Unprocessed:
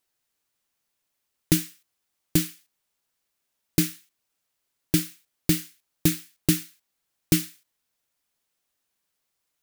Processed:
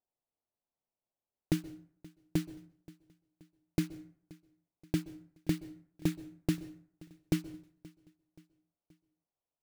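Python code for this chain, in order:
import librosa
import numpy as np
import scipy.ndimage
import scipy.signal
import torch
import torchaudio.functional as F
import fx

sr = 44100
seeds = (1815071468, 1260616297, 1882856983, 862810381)

y = fx.wiener(x, sr, points=25)
y = fx.lowpass(y, sr, hz=2100.0, slope=6)
y = fx.peak_eq(y, sr, hz=710.0, db=6.5, octaves=0.91)
y = fx.echo_feedback(y, sr, ms=527, feedback_pct=49, wet_db=-22.5)
y = fx.rev_plate(y, sr, seeds[0], rt60_s=0.54, hf_ratio=0.6, predelay_ms=115, drr_db=17.5)
y = F.gain(torch.from_numpy(y), -8.5).numpy()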